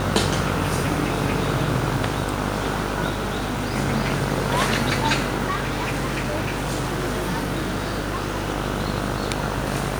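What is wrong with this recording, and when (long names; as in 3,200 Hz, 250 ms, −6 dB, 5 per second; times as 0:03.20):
mains buzz 50 Hz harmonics 31 −28 dBFS
0:03.09–0:03.74: clipping −20.5 dBFS
0:05.49–0:08.48: clipping −20 dBFS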